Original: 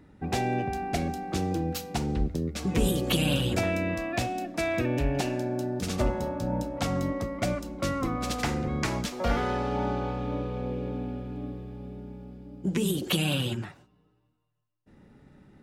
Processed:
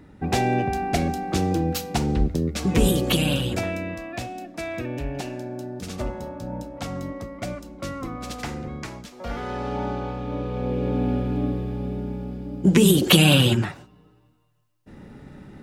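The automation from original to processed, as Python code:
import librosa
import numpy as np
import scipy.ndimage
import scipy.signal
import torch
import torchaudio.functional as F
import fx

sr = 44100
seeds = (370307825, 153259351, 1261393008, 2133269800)

y = fx.gain(x, sr, db=fx.line((2.93, 6.0), (4.01, -3.0), (8.68, -3.0), (9.04, -9.5), (9.68, 1.0), (10.25, 1.0), (11.13, 11.5)))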